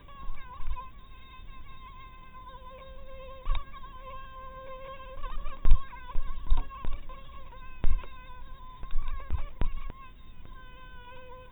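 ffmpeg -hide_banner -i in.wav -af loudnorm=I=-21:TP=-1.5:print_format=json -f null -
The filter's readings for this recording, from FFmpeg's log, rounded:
"input_i" : "-41.0",
"input_tp" : "-5.1",
"input_lra" : "7.7",
"input_thresh" : "-51.2",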